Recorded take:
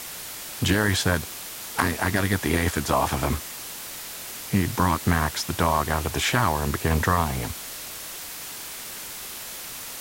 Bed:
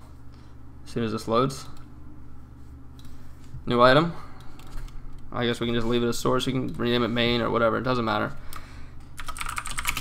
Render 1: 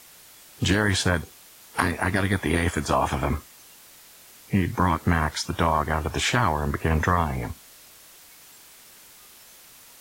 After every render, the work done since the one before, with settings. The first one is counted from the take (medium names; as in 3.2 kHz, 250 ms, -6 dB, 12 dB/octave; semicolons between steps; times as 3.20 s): noise print and reduce 13 dB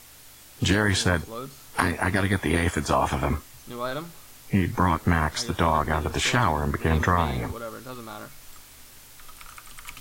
add bed -14 dB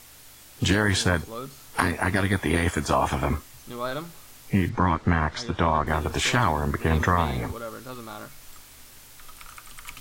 4.69–5.87 s: distance through air 110 m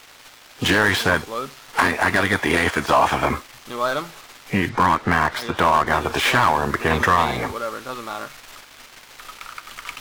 dead-time distortion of 0.059 ms; overdrive pedal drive 17 dB, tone 3.6 kHz, clips at -4 dBFS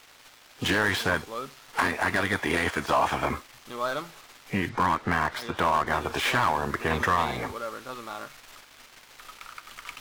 trim -7 dB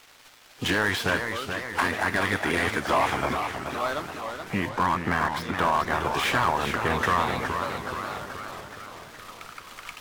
modulated delay 422 ms, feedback 60%, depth 186 cents, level -7 dB